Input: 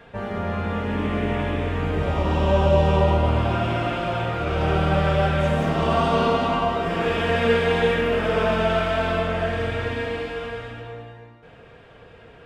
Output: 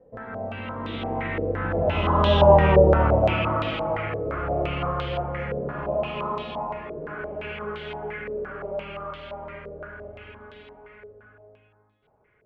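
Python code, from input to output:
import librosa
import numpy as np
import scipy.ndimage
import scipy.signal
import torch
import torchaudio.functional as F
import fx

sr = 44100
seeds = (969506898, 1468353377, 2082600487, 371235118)

y = fx.doppler_pass(x, sr, speed_mps=37, closest_m=28.0, pass_at_s=2.67)
y = fx.filter_held_lowpass(y, sr, hz=5.8, low_hz=490.0, high_hz=3600.0)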